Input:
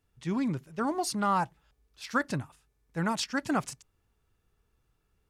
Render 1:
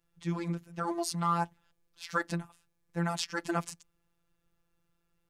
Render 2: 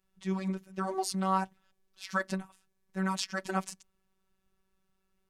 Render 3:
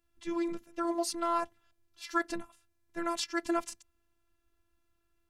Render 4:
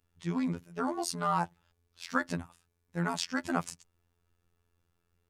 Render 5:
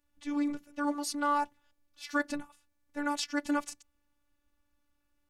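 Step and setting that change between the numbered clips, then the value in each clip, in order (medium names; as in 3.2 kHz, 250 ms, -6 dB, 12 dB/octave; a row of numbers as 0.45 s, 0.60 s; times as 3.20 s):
robot voice, frequency: 170 Hz, 190 Hz, 340 Hz, 86 Hz, 290 Hz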